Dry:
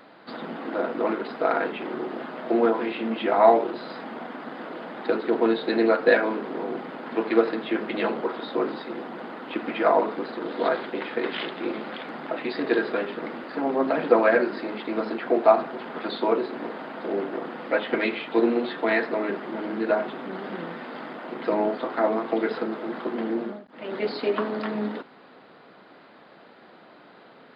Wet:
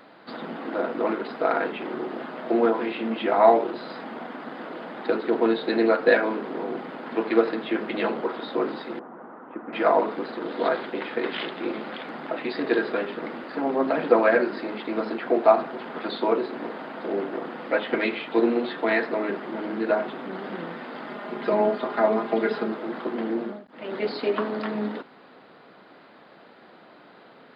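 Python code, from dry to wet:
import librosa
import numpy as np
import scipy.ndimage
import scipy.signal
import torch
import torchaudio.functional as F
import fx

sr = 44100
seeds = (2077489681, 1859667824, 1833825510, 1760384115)

y = fx.ladder_lowpass(x, sr, hz=1600.0, resonance_pct=30, at=(8.99, 9.73))
y = fx.comb(y, sr, ms=4.9, depth=0.65, at=(21.07, 22.72))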